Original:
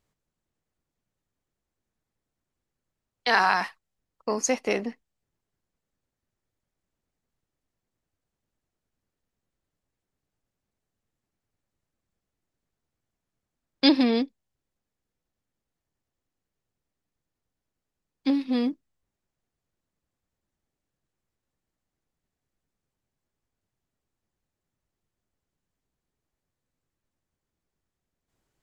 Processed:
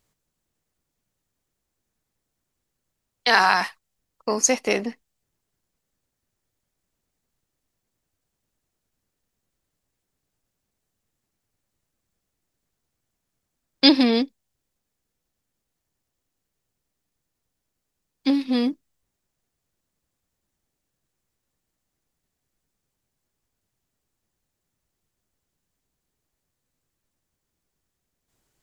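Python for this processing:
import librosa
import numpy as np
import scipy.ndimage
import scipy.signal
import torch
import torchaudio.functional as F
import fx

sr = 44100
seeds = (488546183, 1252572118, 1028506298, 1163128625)

y = fx.high_shelf(x, sr, hz=4000.0, db=7.5)
y = y * 10.0 ** (3.0 / 20.0)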